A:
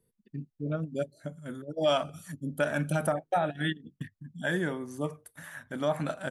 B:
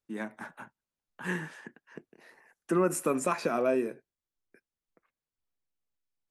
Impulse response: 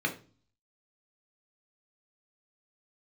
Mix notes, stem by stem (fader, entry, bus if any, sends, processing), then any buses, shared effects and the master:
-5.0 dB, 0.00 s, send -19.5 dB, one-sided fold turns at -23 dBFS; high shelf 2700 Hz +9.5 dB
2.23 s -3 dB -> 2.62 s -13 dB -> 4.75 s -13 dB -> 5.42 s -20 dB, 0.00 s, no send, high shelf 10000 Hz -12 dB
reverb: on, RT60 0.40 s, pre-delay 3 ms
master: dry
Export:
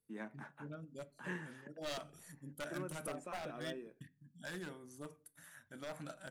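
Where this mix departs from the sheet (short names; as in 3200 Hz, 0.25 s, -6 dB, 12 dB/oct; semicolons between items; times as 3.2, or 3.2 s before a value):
stem A -5.0 dB -> -16.0 dB; stem B -3.0 dB -> -9.5 dB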